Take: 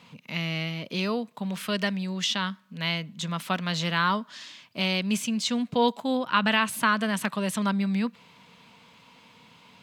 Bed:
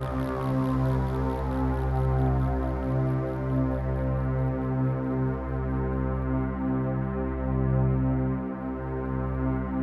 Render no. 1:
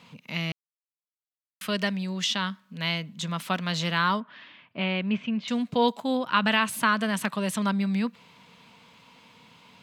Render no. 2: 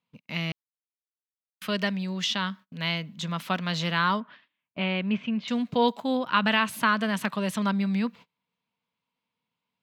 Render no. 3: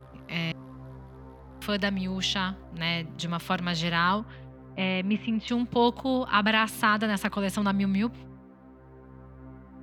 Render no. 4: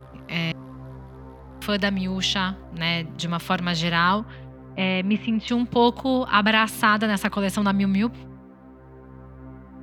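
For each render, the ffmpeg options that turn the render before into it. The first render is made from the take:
-filter_complex "[0:a]asettb=1/sr,asplit=3[s0][s1][s2];[s0]atrim=end=4.204[s3];[s1]atrim=start=4.2:end=5.48,asetpts=PTS-STARTPTS,afade=t=in:d=0.004:c=qsin,afade=t=out:st=1.276:d=0.004:c=qsin,lowpass=f=2800:w=0.5412,lowpass=f=2800:w=1.3066[s4];[s2]atrim=start=5.476[s5];[s3][s4]acrossfade=d=0.004:c1=hsin:c2=qsin[s6];[s6][s5]acrossfade=d=0.004:c1=qsin:c2=hsin,asplit=3[s7][s8][s9];[s7]atrim=end=0.52,asetpts=PTS-STARTPTS,afade=t=out:st=0.516:d=0.004:c=hsin[s10];[s8]atrim=start=0.52:end=1.61,asetpts=PTS-STARTPTS,volume=0[s11];[s9]atrim=start=1.61,asetpts=PTS-STARTPTS,afade=t=in:d=0.004:c=hsin[s12];[s10][s11][s12]concat=n=3:v=0:a=1"
-af "agate=range=0.0282:threshold=0.00631:ratio=16:detection=peak,equalizer=f=9000:w=1.2:g=-7"
-filter_complex "[1:a]volume=0.112[s0];[0:a][s0]amix=inputs=2:normalize=0"
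-af "volume=1.68"

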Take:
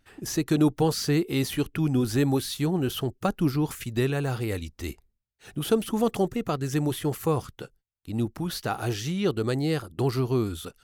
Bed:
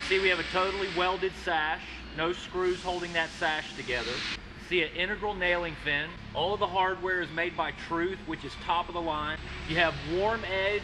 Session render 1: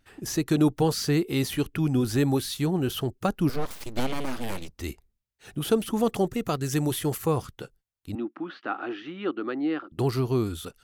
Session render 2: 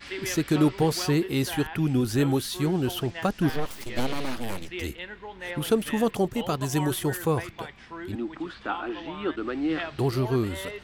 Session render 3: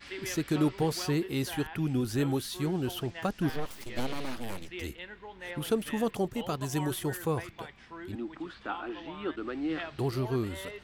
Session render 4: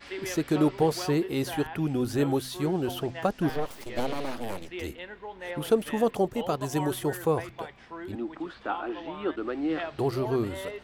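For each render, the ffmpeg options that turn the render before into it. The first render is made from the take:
-filter_complex "[0:a]asettb=1/sr,asplit=3[s0][s1][s2];[s0]atrim=end=3.494[s3];[s1]atrim=start=3.49:end=4.74,asetpts=PTS-STARTPTS,afade=t=in:d=0.004:c=qsin,afade=t=out:st=1.246:d=0.004:c=qsin,aeval=exprs='abs(val(0))':c=same[s4];[s2]atrim=start=4.736[s5];[s3][s4]acrossfade=d=0.004:c1=hsin:c2=qsin[s6];[s6][s5]acrossfade=d=0.004:c1=qsin:c2=hsin,asettb=1/sr,asplit=3[s7][s8][s9];[s7]atrim=end=6.334[s10];[s8]atrim=start=6.33:end=7.18,asetpts=PTS-STARTPTS,afade=t=in:d=0.004:c=qsin,afade=t=out:st=0.846:d=0.004:c=qsin,highshelf=f=4000:g=6[s11];[s9]atrim=start=7.176[s12];[s10][s11]acrossfade=d=0.004:c1=hsin:c2=qsin[s13];[s13][s12]acrossfade=d=0.004:c1=qsin:c2=hsin,asettb=1/sr,asplit=3[s14][s15][s16];[s14]atrim=end=8.154[s17];[s15]atrim=start=8.15:end=9.92,asetpts=PTS-STARTPTS,afade=t=in:d=0.004:c=qsin,afade=t=out:st=1.766:d=0.004:c=qsin,highpass=f=280:w=0.5412,highpass=f=280:w=1.3066,equalizer=f=300:t=q:w=4:g=7,equalizer=f=440:t=q:w=4:g=-10,equalizer=f=630:t=q:w=4:g=-4,equalizer=f=900:t=q:w=4:g=-4,equalizer=f=1300:t=q:w=4:g=4,equalizer=f=2200:t=q:w=4:g=-4,lowpass=f=2700:w=0.5412,lowpass=f=2700:w=1.3066[s18];[s16]atrim=start=9.916[s19];[s17][s18]acrossfade=d=0.004:c1=hsin:c2=qsin[s20];[s20][s19]acrossfade=d=0.004:c1=qsin:c2=hsin"
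-filter_complex "[1:a]volume=0.355[s0];[0:a][s0]amix=inputs=2:normalize=0"
-af "volume=0.531"
-af "equalizer=f=600:t=o:w=1.8:g=7.5,bandreject=f=128.4:t=h:w=4,bandreject=f=256.8:t=h:w=4"

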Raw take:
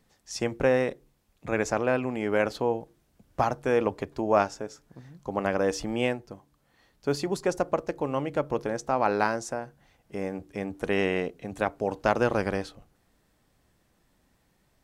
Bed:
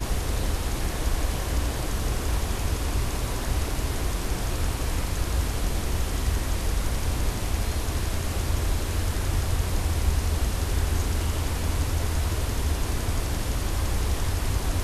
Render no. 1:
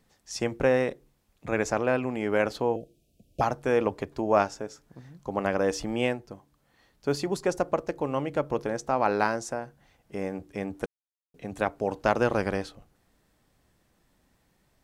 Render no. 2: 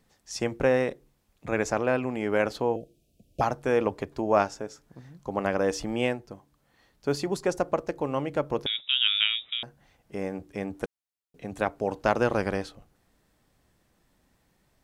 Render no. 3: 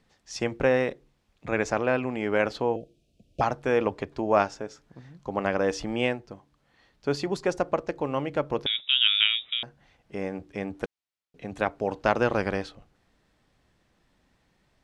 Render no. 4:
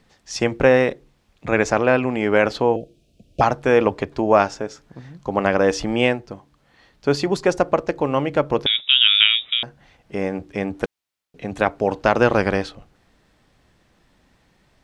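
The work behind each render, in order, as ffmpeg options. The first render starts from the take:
-filter_complex "[0:a]asettb=1/sr,asplit=3[s0][s1][s2];[s0]atrim=end=2.764[s3];[s1]atrim=start=2.76:end=3.41,asetpts=PTS-STARTPTS,afade=t=in:d=0.004:c=qsin,afade=t=out:st=0.646:d=0.004:c=qsin,asuperstop=centerf=1300:order=20:qfactor=0.77[s4];[s2]atrim=start=3.406[s5];[s3][s4]acrossfade=d=0.004:c1=hsin:c2=qsin[s6];[s6][s5]acrossfade=d=0.004:c1=qsin:c2=hsin,asplit=3[s7][s8][s9];[s7]atrim=end=10.86,asetpts=PTS-STARTPTS,afade=t=out:st=10.856:d=0.004:c=hsin[s10];[s8]atrim=start=10.86:end=11.34,asetpts=PTS-STARTPTS,volume=0[s11];[s9]atrim=start=11.34,asetpts=PTS-STARTPTS,afade=t=in:d=0.004:c=hsin[s12];[s10][s11][s12]concat=n=3:v=0:a=1"
-filter_complex "[0:a]asettb=1/sr,asplit=3[s0][s1][s2];[s0]atrim=end=8.664[s3];[s1]atrim=start=8.66:end=9.63,asetpts=PTS-STARTPTS,afade=t=in:d=0.004:c=qsin,afade=t=out:st=0.966:d=0.004:c=qsin,lowpass=f=3300:t=q:w=0.5098,lowpass=f=3300:t=q:w=0.6013,lowpass=f=3300:t=q:w=0.9,lowpass=f=3300:t=q:w=2.563,afreqshift=-3900[s4];[s2]atrim=start=9.626[s5];[s3][s4]acrossfade=d=0.004:c1=hsin:c2=qsin[s6];[s6][s5]acrossfade=d=0.004:c1=qsin:c2=hsin"
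-af "lowpass=3300,aemphasis=mode=production:type=75kf"
-af "volume=2.51,alimiter=limit=0.794:level=0:latency=1"

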